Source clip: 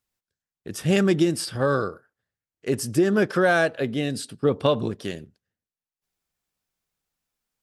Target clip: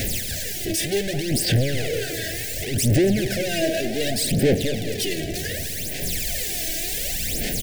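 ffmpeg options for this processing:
-filter_complex "[0:a]aeval=exprs='val(0)+0.5*0.075*sgn(val(0))':c=same,asettb=1/sr,asplit=3[a][b][c];[a]atrim=end=4.544[d];[b]atrim=start=4.54:end=5.18,asetpts=PTS-STARTPTS,afade=t=in:d=0.004:c=qsin,afade=t=out:st=0.636:d=0.004:c=qsin,tiltshelf=f=1.4k:g=-6[e];[c]atrim=start=5.176[f];[d][e]acrossfade=d=0.004:c1=hsin:c2=qsin[g];[g][f]acrossfade=d=0.004:c1=qsin:c2=hsin,asoftclip=type=hard:threshold=-25dB,aphaser=in_gain=1:out_gain=1:delay=3.1:decay=0.69:speed=0.67:type=sinusoidal,asuperstop=centerf=1100:order=8:qfactor=1.1,asplit=2[h][i];[i]adelay=214,lowpass=f=2k:p=1,volume=-11.5dB,asplit=2[j][k];[k]adelay=214,lowpass=f=2k:p=1,volume=0.52,asplit=2[l][m];[m]adelay=214,lowpass=f=2k:p=1,volume=0.52,asplit=2[n][o];[o]adelay=214,lowpass=f=2k:p=1,volume=0.52,asplit=2[p][q];[q]adelay=214,lowpass=f=2k:p=1,volume=0.52,asplit=2[r][s];[s]adelay=214,lowpass=f=2k:p=1,volume=0.52[t];[h][j][l][n][p][r][t]amix=inputs=7:normalize=0"

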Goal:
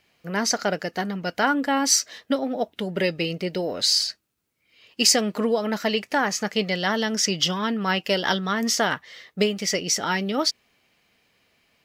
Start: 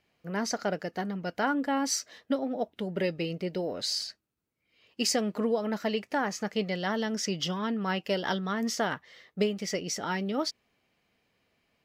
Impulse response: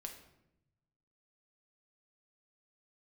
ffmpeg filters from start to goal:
-af "tiltshelf=f=1.4k:g=-3.5,volume=8dB"

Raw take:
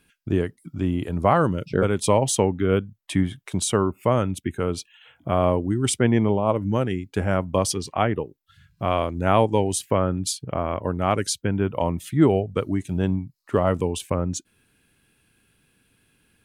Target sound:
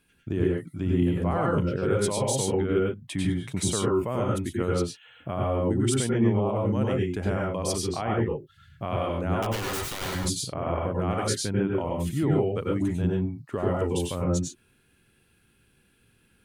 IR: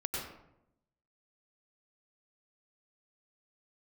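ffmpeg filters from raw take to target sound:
-filter_complex "[0:a]alimiter=limit=-14dB:level=0:latency=1:release=108,asettb=1/sr,asplit=3[a][b][c];[a]atrim=end=9.424[d];[b]atrim=start=9.42:end=10.15,asetpts=PTS-STARTPTS,afade=t=in:d=0.004:c=qsin,afade=t=out:st=0.726:d=0.004:c=qsin,aeval=exprs='(mod(15.8*val(0)+1,2)-1)/15.8':c=same[e];[c]atrim=start=10.146[f];[d][e]acrossfade=d=0.004:c1=hsin:c2=qsin[g];[g][f]acrossfade=d=0.004:c1=qsin:c2=hsin[h];[1:a]atrim=start_sample=2205,atrim=end_sample=6615[i];[h][i]afir=irnorm=-1:irlink=0,volume=-3dB"

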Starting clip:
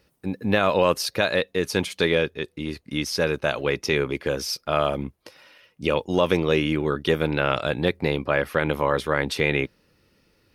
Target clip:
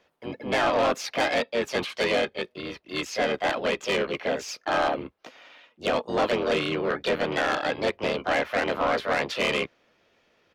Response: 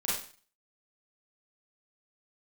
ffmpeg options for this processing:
-filter_complex "[0:a]acrossover=split=350 3700:gain=0.141 1 0.126[a][b][c];[a][b][c]amix=inputs=3:normalize=0,asplit=3[d][e][f];[e]asetrate=22050,aresample=44100,atempo=2,volume=-8dB[g];[f]asetrate=55563,aresample=44100,atempo=0.793701,volume=-1dB[h];[d][g][h]amix=inputs=3:normalize=0,asoftclip=type=tanh:threshold=-18dB"

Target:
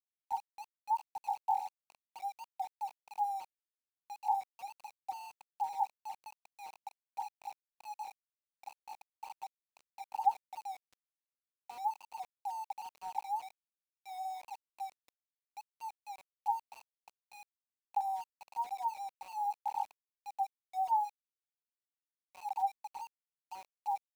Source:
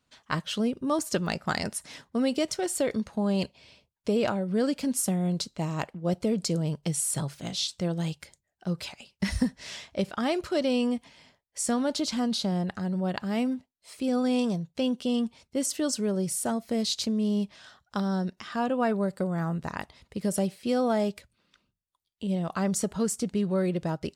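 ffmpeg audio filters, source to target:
-af "asuperpass=centerf=840:order=12:qfactor=5.3,aeval=exprs='val(0)*gte(abs(val(0)),0.0015)':c=same,volume=8.5dB"

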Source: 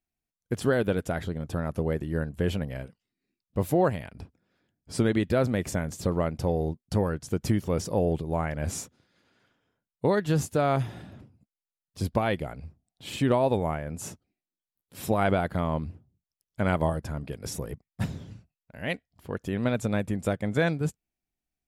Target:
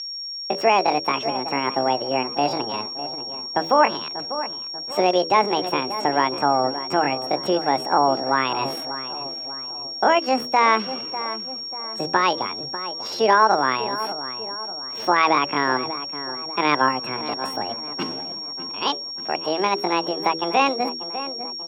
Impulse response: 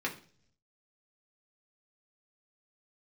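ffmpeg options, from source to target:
-filter_complex "[0:a]asplit=2[a][b];[b]alimiter=limit=-20dB:level=0:latency=1:release=251,volume=-2dB[c];[a][c]amix=inputs=2:normalize=0,equalizer=f=2.5k:w=6.5:g=-5.5,aeval=exprs='val(0)+0.0398*sin(2*PI*3400*n/s)':c=same,highpass=f=49:w=0.5412,highpass=f=49:w=1.3066,acrossover=split=200 3100:gain=0.126 1 0.0794[d][e][f];[d][e][f]amix=inputs=3:normalize=0,bandreject=f=50:t=h:w=6,bandreject=f=100:t=h:w=6,bandreject=f=150:t=h:w=6,bandreject=f=200:t=h:w=6,bandreject=f=250:t=h:w=6,bandreject=f=300:t=h:w=6,bandreject=f=350:t=h:w=6,asplit=2[g][h];[h]adelay=588,lowpass=f=1k:p=1,volume=-11dB,asplit=2[i][j];[j]adelay=588,lowpass=f=1k:p=1,volume=0.52,asplit=2[k][l];[l]adelay=588,lowpass=f=1k:p=1,volume=0.52,asplit=2[m][n];[n]adelay=588,lowpass=f=1k:p=1,volume=0.52,asplit=2[o][p];[p]adelay=588,lowpass=f=1k:p=1,volume=0.52,asplit=2[q][r];[r]adelay=588,lowpass=f=1k:p=1,volume=0.52[s];[g][i][k][m][o][q][s]amix=inputs=7:normalize=0,asetrate=72056,aresample=44100,atempo=0.612027,volume=5.5dB"

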